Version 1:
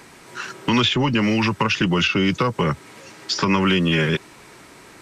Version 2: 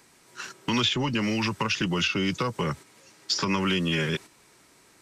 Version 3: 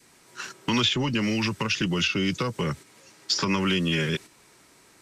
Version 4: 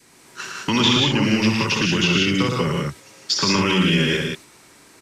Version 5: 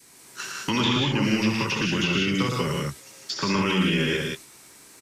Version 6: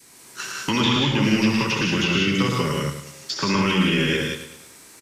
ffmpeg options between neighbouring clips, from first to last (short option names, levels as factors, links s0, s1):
-filter_complex "[0:a]agate=range=0.447:threshold=0.0251:ratio=16:detection=peak,acrossover=split=4100[s0][s1];[s1]acontrast=86[s2];[s0][s2]amix=inputs=2:normalize=0,volume=0.422"
-af "adynamicequalizer=threshold=0.00708:dfrequency=920:dqfactor=1.1:tfrequency=920:tqfactor=1.1:attack=5:release=100:ratio=0.375:range=3:mode=cutabove:tftype=bell,volume=1.19"
-af "aecho=1:1:65|113|154|182:0.355|0.596|0.562|0.562,volume=1.5"
-filter_complex "[0:a]acrossover=split=2800[s0][s1];[s1]acompressor=threshold=0.02:ratio=6[s2];[s0][s2]amix=inputs=2:normalize=0,crystalizer=i=1.5:c=0,asplit=2[s3][s4];[s4]adelay=15,volume=0.266[s5];[s3][s5]amix=inputs=2:normalize=0,volume=0.596"
-af "aecho=1:1:104|208|312|416|520:0.299|0.131|0.0578|0.0254|0.0112,volume=1.33"